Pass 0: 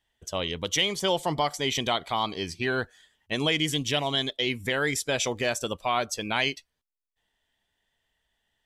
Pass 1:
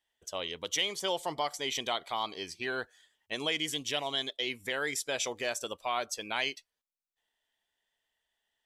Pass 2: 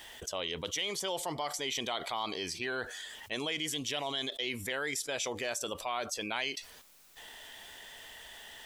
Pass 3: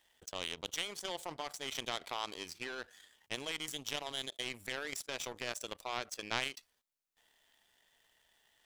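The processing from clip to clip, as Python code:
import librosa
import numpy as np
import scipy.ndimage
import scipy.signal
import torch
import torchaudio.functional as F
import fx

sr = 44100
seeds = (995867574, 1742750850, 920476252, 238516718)

y1 = fx.bass_treble(x, sr, bass_db=-12, treble_db=2)
y1 = F.gain(torch.from_numpy(y1), -6.0).numpy()
y2 = fx.env_flatten(y1, sr, amount_pct=70)
y2 = F.gain(torch.from_numpy(y2), -5.5).numpy()
y3 = fx.power_curve(y2, sr, exponent=2.0)
y3 = F.gain(torch.from_numpy(y3), 4.5).numpy()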